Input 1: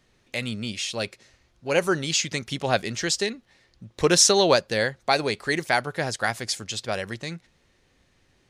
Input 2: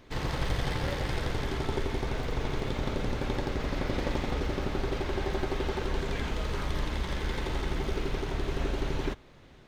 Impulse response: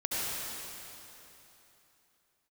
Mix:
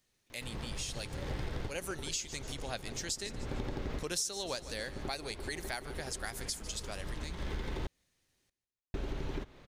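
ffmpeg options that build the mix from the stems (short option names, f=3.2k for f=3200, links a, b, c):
-filter_complex "[0:a]aemphasis=mode=production:type=75fm,volume=-16dB,asplit=3[a][b][c];[b]volume=-17.5dB[d];[1:a]acrossover=split=460[e][f];[f]acompressor=threshold=-41dB:ratio=2[g];[e][g]amix=inputs=2:normalize=0,adelay=300,volume=-1dB,asplit=3[h][i][j];[h]atrim=end=7.87,asetpts=PTS-STARTPTS,afade=t=out:st=7.866:d=0.004:c=hsin[k];[i]atrim=start=7.87:end=8.94,asetpts=PTS-STARTPTS,volume=0[l];[j]atrim=start=8.94,asetpts=PTS-STARTPTS,afade=t=in:d=0.004:c=hsin[m];[k][l][m]concat=n=3:v=0:a=1[n];[c]apad=whole_len=439706[o];[n][o]sidechaincompress=threshold=-50dB:ratio=4:attack=9.9:release=271[p];[d]aecho=0:1:149|298|447|596|745|894|1043:1|0.47|0.221|0.104|0.0488|0.0229|0.0108[q];[a][p][q]amix=inputs=3:normalize=0,acompressor=threshold=-33dB:ratio=5"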